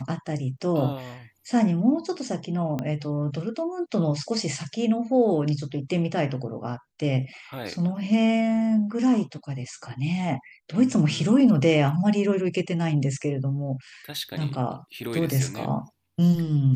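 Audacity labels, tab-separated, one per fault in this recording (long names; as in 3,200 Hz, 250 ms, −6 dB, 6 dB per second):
2.790000	2.790000	click −16 dBFS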